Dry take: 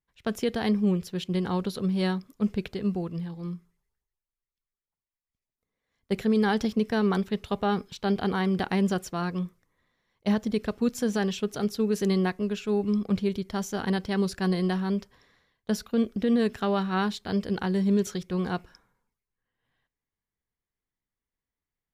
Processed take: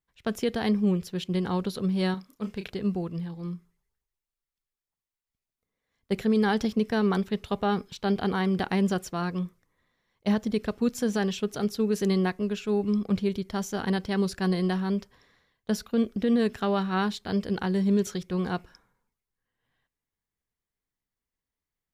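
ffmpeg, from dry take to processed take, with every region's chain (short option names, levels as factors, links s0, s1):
-filter_complex "[0:a]asettb=1/sr,asplit=3[s0][s1][s2];[s0]atrim=end=2.144[s3];[s1]atrim=start=2.14:end=2.7,asetpts=PTS-STARTPTS,afade=t=in:d=0.004:c=qsin,afade=t=out:st=0.556:d=0.004:c=qsin,lowshelf=f=430:g=-8,asplit=2[s4][s5];[s5]adelay=31,volume=0.398[s6];[s4][s6]amix=inputs=2:normalize=0,atrim=end_sample=24696[s7];[s2]atrim=start=2.696[s8];[s3][s7]acrossfade=d=0.004:c1=hsin:c2=qsin[s9];[s9][s8]acrossfade=d=0.004:c1=qsin:c2=hsin"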